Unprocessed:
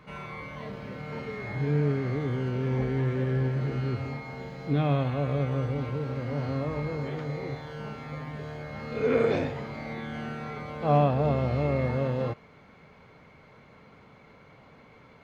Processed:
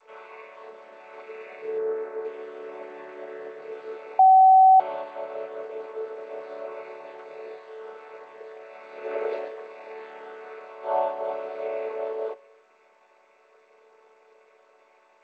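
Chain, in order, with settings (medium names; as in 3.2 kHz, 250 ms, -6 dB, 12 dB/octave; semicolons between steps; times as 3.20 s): vocoder on a held chord major triad, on D3; Chebyshev high-pass 430 Hz, order 4; 1.78–2.25 s: resonant high shelf 2.1 kHz -9 dB, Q 1.5; spring tank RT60 1.2 s, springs 36 ms, chirp 70 ms, DRR 20 dB; 4.19–4.80 s: bleep 759 Hz -14.5 dBFS; trim +4 dB; G.722 64 kbps 16 kHz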